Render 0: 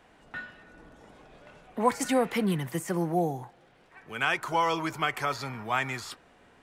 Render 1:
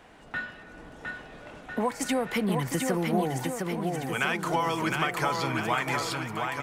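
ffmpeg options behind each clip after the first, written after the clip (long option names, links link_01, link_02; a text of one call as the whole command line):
ffmpeg -i in.wav -filter_complex "[0:a]acompressor=threshold=-30dB:ratio=6,asplit=2[link_01][link_02];[link_02]aecho=0:1:710|1349|1924|2442|2908:0.631|0.398|0.251|0.158|0.1[link_03];[link_01][link_03]amix=inputs=2:normalize=0,volume=5.5dB" out.wav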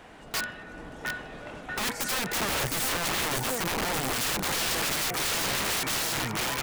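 ffmpeg -i in.wav -af "aeval=exprs='(mod(23.7*val(0)+1,2)-1)/23.7':channel_layout=same,volume=4dB" out.wav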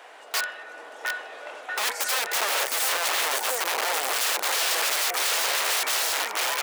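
ffmpeg -i in.wav -af "highpass=frequency=480:width=0.5412,highpass=frequency=480:width=1.3066,volume=4dB" out.wav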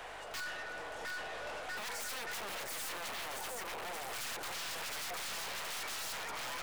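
ffmpeg -i in.wav -af "alimiter=limit=-23.5dB:level=0:latency=1:release=28,aeval=exprs='val(0)+0.000631*(sin(2*PI*50*n/s)+sin(2*PI*2*50*n/s)/2+sin(2*PI*3*50*n/s)/3+sin(2*PI*4*50*n/s)/4+sin(2*PI*5*50*n/s)/5)':channel_layout=same,aeval=exprs='(tanh(126*val(0)+0.4)-tanh(0.4))/126':channel_layout=same,volume=2.5dB" out.wav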